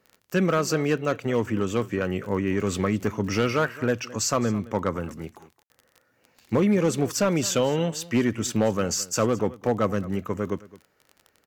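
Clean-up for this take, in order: clip repair -14.5 dBFS; de-click; room tone fill 5.63–5.7; inverse comb 0.215 s -19.5 dB

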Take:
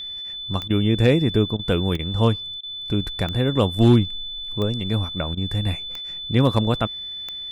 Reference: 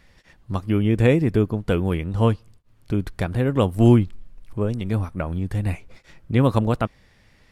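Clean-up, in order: clip repair -6 dBFS; de-click; notch 3500 Hz, Q 30; interpolate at 0.68/1.57/1.97/2.61/5.35, 21 ms

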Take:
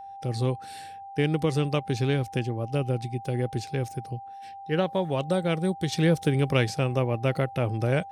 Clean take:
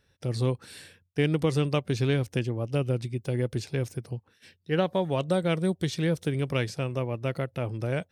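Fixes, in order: notch 790 Hz, Q 30; gain correction -4.5 dB, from 5.92

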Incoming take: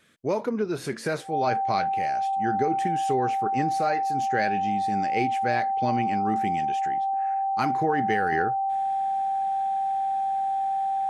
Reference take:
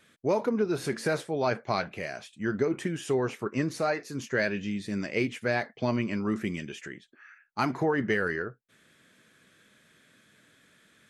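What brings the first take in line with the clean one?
notch 780 Hz, Q 30; gain correction -5.5 dB, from 8.32

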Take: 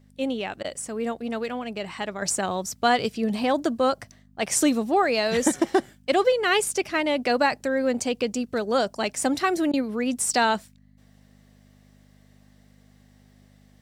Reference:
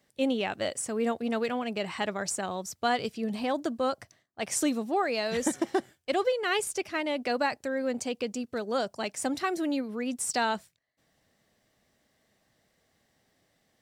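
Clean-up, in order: de-hum 50.3 Hz, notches 5; interpolate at 0.63/9.72, 13 ms; gain 0 dB, from 2.22 s -6.5 dB

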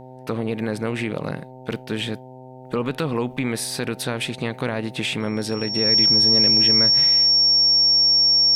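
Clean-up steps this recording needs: de-hum 128.5 Hz, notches 7; notch 5500 Hz, Q 30

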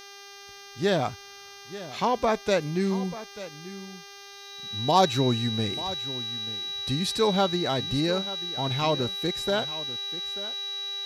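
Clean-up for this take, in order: de-hum 399.4 Hz, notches 16; notch 3900 Hz, Q 30; expander -38 dBFS, range -21 dB; inverse comb 0.888 s -15 dB

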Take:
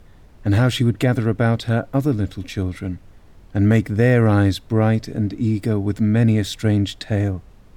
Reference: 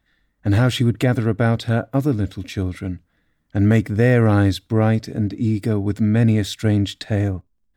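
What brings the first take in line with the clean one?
noise print and reduce 20 dB

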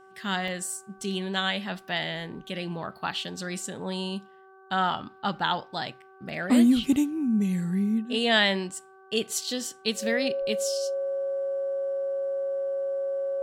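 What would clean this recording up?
de-hum 382.7 Hz, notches 4; notch 550 Hz, Q 30; interpolate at 0.48, 1.2 ms

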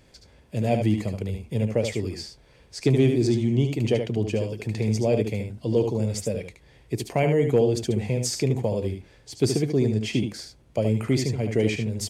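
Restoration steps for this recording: clip repair -10.5 dBFS; inverse comb 74 ms -6.5 dB

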